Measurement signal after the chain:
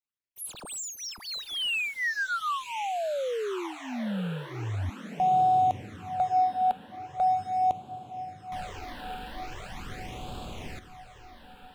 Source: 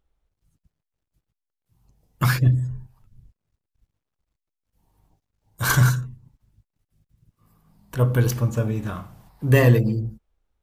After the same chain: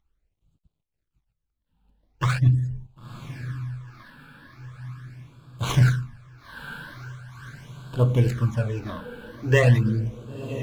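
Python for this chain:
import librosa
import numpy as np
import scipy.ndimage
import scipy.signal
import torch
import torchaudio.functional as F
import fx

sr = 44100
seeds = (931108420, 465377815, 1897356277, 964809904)

y = scipy.signal.medfilt(x, 9)
y = fx.high_shelf(y, sr, hz=11000.0, db=-5.0)
y = fx.echo_diffused(y, sr, ms=1017, feedback_pct=61, wet_db=-12.0)
y = fx.phaser_stages(y, sr, stages=12, low_hz=110.0, high_hz=2000.0, hz=0.41, feedback_pct=0)
y = fx.peak_eq(y, sr, hz=4300.0, db=6.0, octaves=2.6)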